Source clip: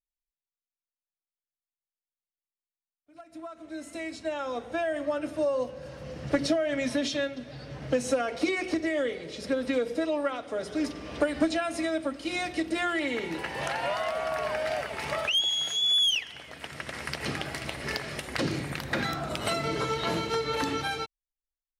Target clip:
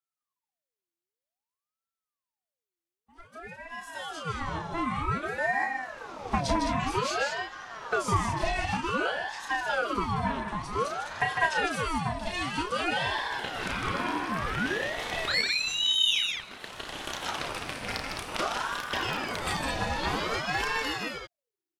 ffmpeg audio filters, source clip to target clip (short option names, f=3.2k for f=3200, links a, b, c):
-af "aecho=1:1:32.07|154.5|209.9:0.562|0.562|0.501,aeval=exprs='val(0)*sin(2*PI*840*n/s+840*0.6/0.53*sin(2*PI*0.53*n/s))':c=same"